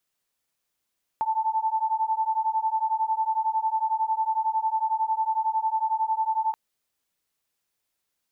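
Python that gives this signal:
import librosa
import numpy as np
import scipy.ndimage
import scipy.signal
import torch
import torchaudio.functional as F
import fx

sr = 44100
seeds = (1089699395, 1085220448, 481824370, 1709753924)

y = fx.two_tone_beats(sr, length_s=5.33, hz=877.0, beat_hz=11.0, level_db=-25.5)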